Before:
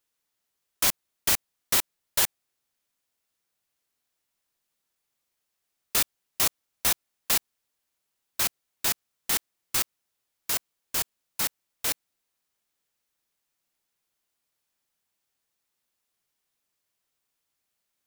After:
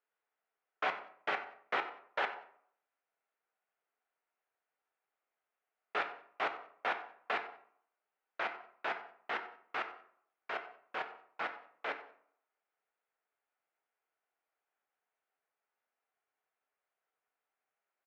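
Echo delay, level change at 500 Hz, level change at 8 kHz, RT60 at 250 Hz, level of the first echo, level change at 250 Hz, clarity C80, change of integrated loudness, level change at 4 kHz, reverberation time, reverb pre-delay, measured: 93 ms, −0.5 dB, below −40 dB, 0.60 s, −17.0 dB, −10.5 dB, 13.0 dB, −13.0 dB, −17.0 dB, 0.60 s, 3 ms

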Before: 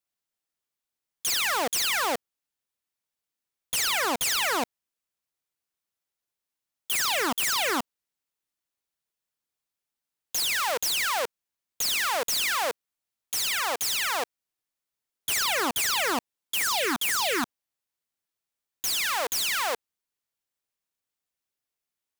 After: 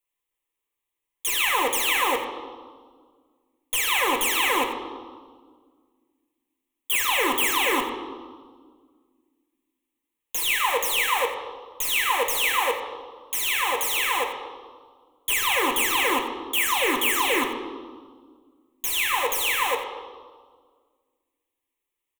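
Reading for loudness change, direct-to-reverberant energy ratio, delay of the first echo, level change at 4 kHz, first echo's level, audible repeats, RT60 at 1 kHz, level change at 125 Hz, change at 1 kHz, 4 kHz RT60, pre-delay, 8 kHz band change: +3.0 dB, 0.5 dB, 89 ms, +1.5 dB, −12.0 dB, 1, 1.6 s, can't be measured, +5.0 dB, 1.3 s, 4 ms, 0.0 dB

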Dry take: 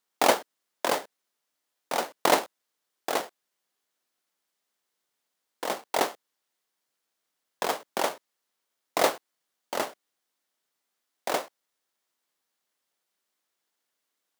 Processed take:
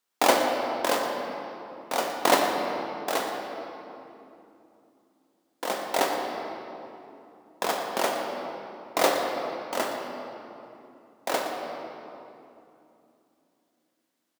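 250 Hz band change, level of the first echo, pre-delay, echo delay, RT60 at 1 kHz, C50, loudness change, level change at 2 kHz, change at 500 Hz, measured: +4.5 dB, −13.5 dB, 3 ms, 117 ms, 2.7 s, 2.5 dB, +0.5 dB, +2.5 dB, +3.0 dB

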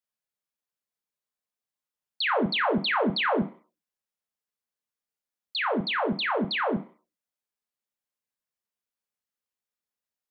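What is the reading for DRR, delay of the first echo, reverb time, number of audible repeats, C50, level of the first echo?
2.0 dB, no echo audible, 0.40 s, no echo audible, 11.5 dB, no echo audible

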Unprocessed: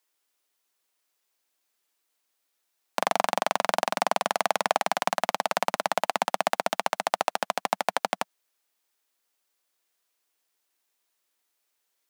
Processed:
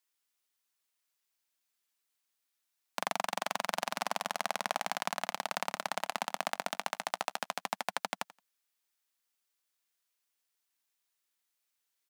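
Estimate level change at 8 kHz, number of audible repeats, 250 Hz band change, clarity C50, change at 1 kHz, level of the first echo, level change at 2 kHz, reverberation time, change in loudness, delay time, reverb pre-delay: −5.5 dB, 2, −8.5 dB, no reverb audible, −9.5 dB, −19.0 dB, −6.5 dB, no reverb audible, −8.5 dB, 86 ms, no reverb audible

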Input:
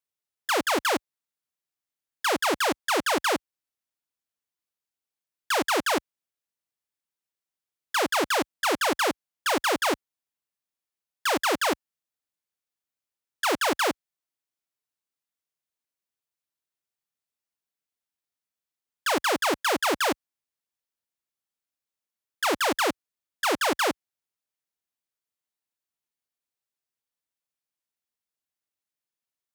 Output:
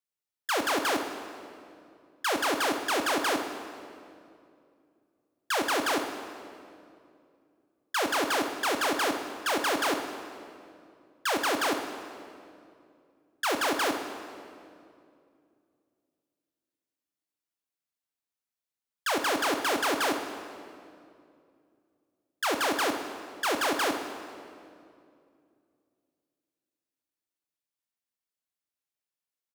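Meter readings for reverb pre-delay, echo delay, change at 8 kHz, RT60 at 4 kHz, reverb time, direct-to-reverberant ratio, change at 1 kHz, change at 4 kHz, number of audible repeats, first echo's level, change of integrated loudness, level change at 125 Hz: 5 ms, 61 ms, −2.5 dB, 1.8 s, 2.4 s, 5.5 dB, −2.5 dB, −2.5 dB, 1, −14.0 dB, −3.0 dB, −3.5 dB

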